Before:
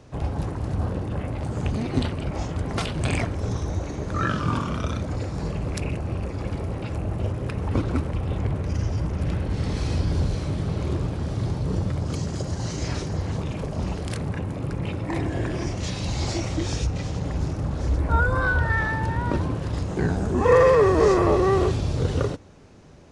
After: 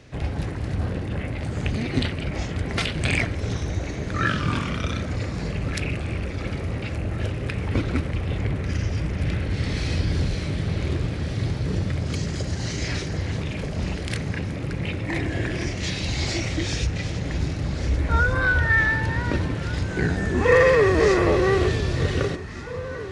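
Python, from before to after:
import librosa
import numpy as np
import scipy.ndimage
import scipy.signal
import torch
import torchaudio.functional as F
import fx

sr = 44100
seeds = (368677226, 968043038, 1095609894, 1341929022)

y = fx.graphic_eq(x, sr, hz=(1000, 2000, 4000), db=(-6, 9, 4))
y = fx.echo_alternate(y, sr, ms=739, hz=1200.0, feedback_pct=83, wet_db=-14)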